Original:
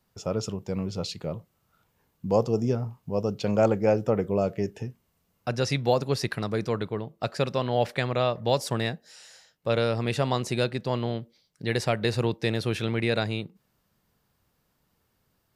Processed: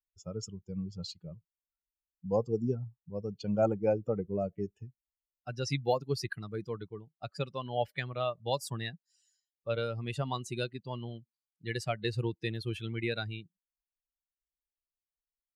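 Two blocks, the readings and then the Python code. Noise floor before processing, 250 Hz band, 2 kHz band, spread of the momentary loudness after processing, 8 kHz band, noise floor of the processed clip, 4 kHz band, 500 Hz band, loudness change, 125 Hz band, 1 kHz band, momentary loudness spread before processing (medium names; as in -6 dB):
-73 dBFS, -8.0 dB, -7.5 dB, 14 LU, -7.5 dB, under -85 dBFS, -8.0 dB, -8.0 dB, -7.5 dB, -7.5 dB, -7.5 dB, 10 LU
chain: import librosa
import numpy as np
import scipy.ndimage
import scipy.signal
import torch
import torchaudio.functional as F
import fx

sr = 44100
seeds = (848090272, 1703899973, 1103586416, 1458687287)

y = fx.bin_expand(x, sr, power=2.0)
y = y * librosa.db_to_amplitude(-2.5)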